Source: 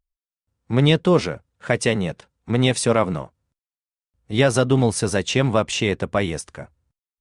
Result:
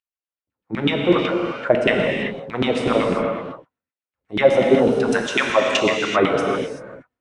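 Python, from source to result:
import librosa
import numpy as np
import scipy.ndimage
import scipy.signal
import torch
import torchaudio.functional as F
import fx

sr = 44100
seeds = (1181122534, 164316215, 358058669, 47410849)

y = fx.riaa(x, sr, side='recording', at=(5.11, 5.77))
y = fx.rider(y, sr, range_db=4, speed_s=0.5)
y = fx.filter_lfo_bandpass(y, sr, shape='saw_down', hz=8.0, low_hz=240.0, high_hz=2900.0, q=2.8)
y = fx.rev_gated(y, sr, seeds[0], gate_ms=410, shape='flat', drr_db=0.0)
y = y * 10.0 ** (8.0 / 20.0)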